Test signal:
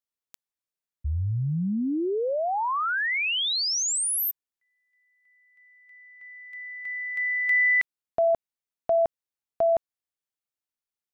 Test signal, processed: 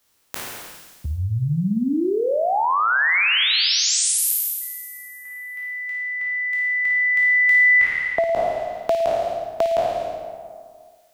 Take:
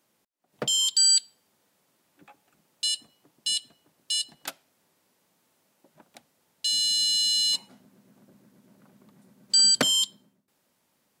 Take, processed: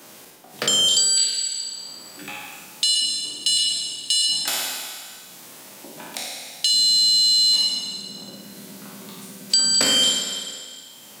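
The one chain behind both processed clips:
peak hold with a decay on every bin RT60 1.18 s
flutter between parallel walls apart 9.4 metres, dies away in 0.56 s
multiband upward and downward compressor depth 70%
level +3.5 dB

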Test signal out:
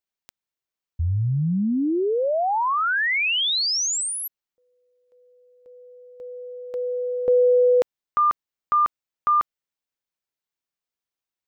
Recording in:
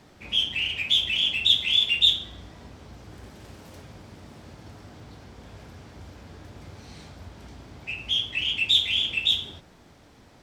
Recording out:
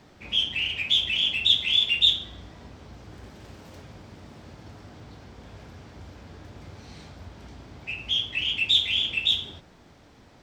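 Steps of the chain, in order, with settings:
parametric band 11,000 Hz −8 dB 0.74 octaves

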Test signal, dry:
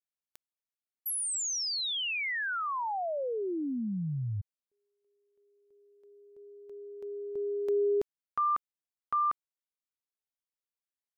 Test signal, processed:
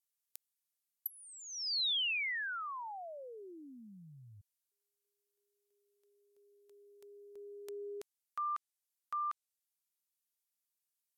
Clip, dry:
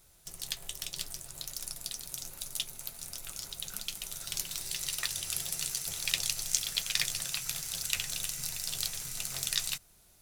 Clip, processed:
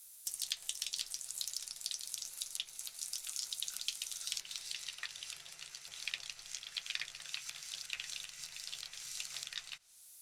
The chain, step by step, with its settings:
first-order pre-emphasis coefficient 0.97
treble cut that deepens with the level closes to 1,900 Hz, closed at −31 dBFS
level +7 dB

